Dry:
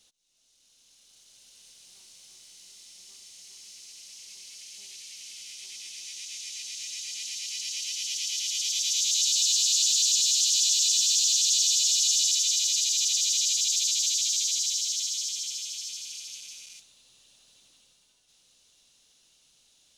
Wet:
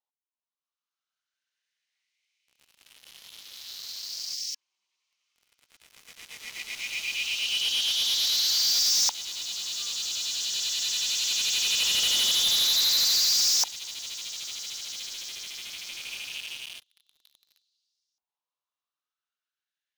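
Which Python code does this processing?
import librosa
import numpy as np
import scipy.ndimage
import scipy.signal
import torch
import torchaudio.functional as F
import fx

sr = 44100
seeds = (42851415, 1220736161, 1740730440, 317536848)

y = fx.filter_lfo_bandpass(x, sr, shape='saw_up', hz=0.22, low_hz=880.0, high_hz=5400.0, q=5.2)
y = fx.leveller(y, sr, passes=5)
y = fx.spec_repair(y, sr, seeds[0], start_s=4.36, length_s=0.56, low_hz=270.0, high_hz=1700.0, source='after')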